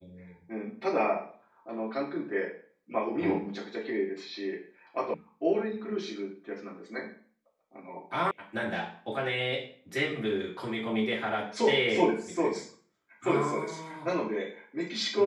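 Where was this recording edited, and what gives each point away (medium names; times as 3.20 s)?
5.14 s: sound stops dead
8.31 s: sound stops dead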